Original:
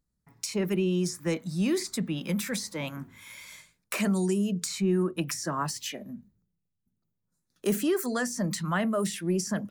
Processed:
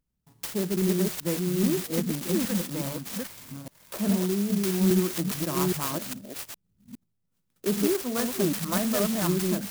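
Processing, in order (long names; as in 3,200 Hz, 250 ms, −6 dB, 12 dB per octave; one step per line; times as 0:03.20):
delay that plays each chunk backwards 409 ms, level −1 dB
0:03.52–0:04.33: low-pass filter 1,300 Hz 6 dB per octave
converter with an unsteady clock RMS 0.13 ms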